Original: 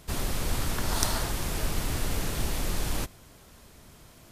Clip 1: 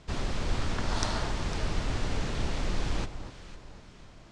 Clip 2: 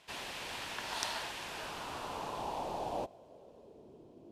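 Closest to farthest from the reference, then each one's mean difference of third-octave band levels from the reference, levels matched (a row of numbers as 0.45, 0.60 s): 1, 2; 6.0, 8.0 dB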